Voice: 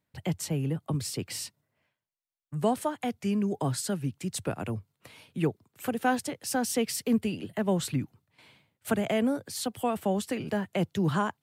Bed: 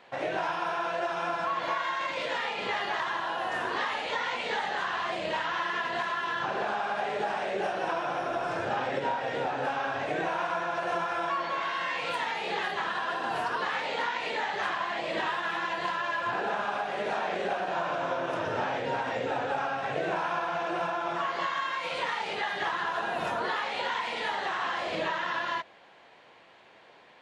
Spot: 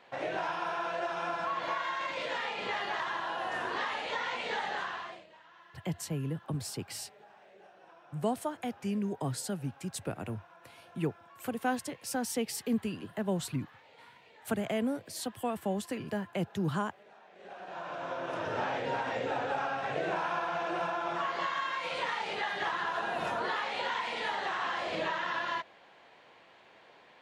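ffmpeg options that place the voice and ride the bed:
ffmpeg -i stem1.wav -i stem2.wav -filter_complex "[0:a]adelay=5600,volume=-5dB[link_01];[1:a]volume=20.5dB,afade=type=out:start_time=4.74:duration=0.52:silence=0.0707946,afade=type=in:start_time=17.34:duration=1.31:silence=0.0630957[link_02];[link_01][link_02]amix=inputs=2:normalize=0" out.wav

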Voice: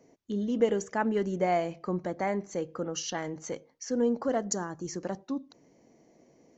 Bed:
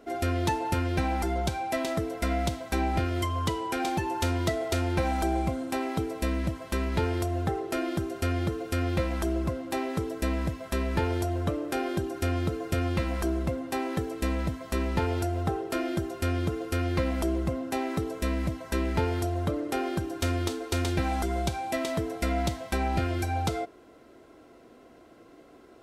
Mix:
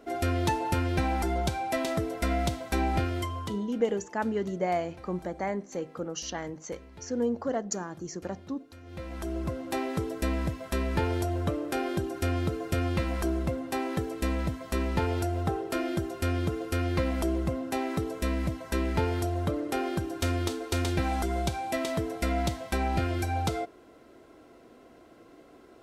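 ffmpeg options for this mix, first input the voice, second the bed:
ffmpeg -i stem1.wav -i stem2.wav -filter_complex "[0:a]adelay=3200,volume=-1.5dB[link_01];[1:a]volume=21dB,afade=type=out:start_time=2.97:duration=0.76:silence=0.0841395,afade=type=in:start_time=8.84:duration=0.86:silence=0.0891251[link_02];[link_01][link_02]amix=inputs=2:normalize=0" out.wav

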